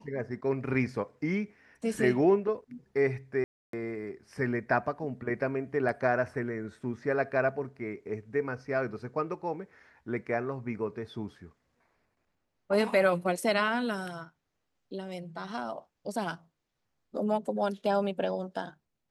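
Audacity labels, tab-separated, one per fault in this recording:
3.440000	3.730000	dropout 293 ms

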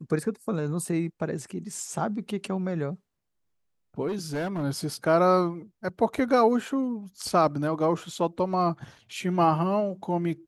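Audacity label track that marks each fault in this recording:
4.070000	4.640000	clipped -26 dBFS

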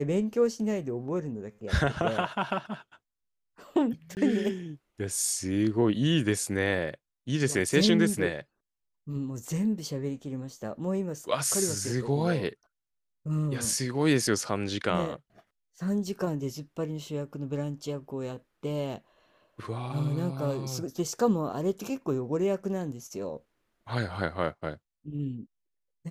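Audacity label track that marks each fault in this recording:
4.150000	4.170000	dropout 19 ms

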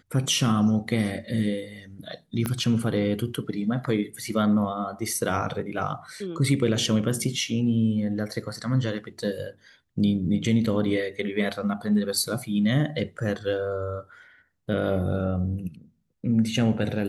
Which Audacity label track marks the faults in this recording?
2.460000	2.460000	pop -13 dBFS

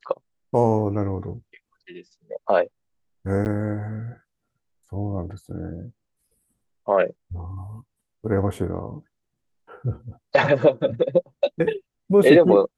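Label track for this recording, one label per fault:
3.450000	3.460000	dropout 9.7 ms

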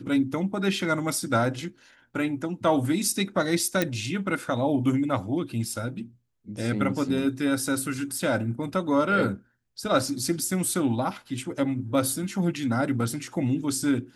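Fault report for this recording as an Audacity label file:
3.820000	3.820000	pop

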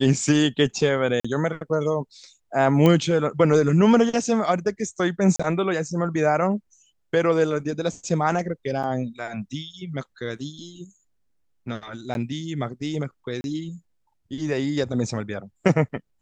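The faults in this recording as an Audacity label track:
1.200000	1.250000	dropout 45 ms
2.860000	2.860000	pop -8 dBFS
5.360000	5.390000	dropout 35 ms
8.830000	8.840000	dropout 6.5 ms
12.140000	12.150000	dropout 11 ms
13.410000	13.440000	dropout 31 ms

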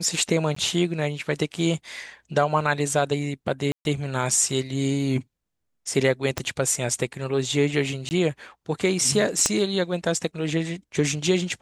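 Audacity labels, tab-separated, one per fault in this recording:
0.550000	0.560000	dropout 14 ms
3.720000	3.850000	dropout 131 ms
6.380000	6.380000	pop -10 dBFS
8.090000	8.110000	dropout 19 ms
9.460000	9.460000	pop -6 dBFS

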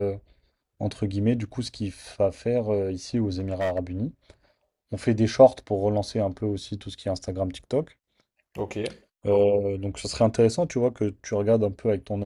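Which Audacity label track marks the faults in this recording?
3.320000	3.790000	clipped -22 dBFS

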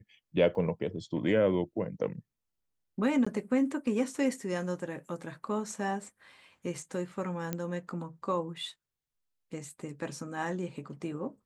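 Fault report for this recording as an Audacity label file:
0.550000	0.550000	dropout 2.8 ms
3.250000	3.270000	dropout 15 ms
7.530000	7.530000	pop -18 dBFS

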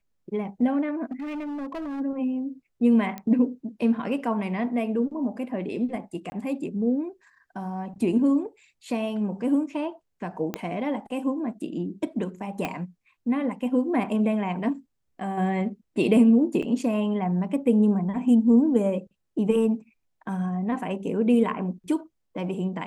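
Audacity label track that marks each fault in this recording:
1.110000	2.010000	clipped -30 dBFS
3.180000	3.180000	pop -20 dBFS
6.300000	6.320000	dropout 20 ms
10.540000	10.540000	pop -14 dBFS
12.650000	12.650000	pop -14 dBFS
16.620000	16.630000	dropout 5.5 ms

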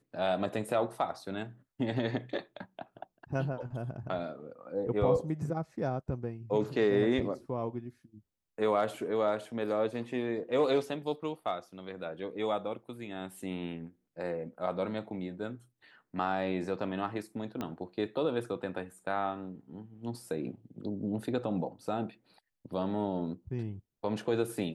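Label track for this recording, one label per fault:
17.610000	17.610000	pop -22 dBFS

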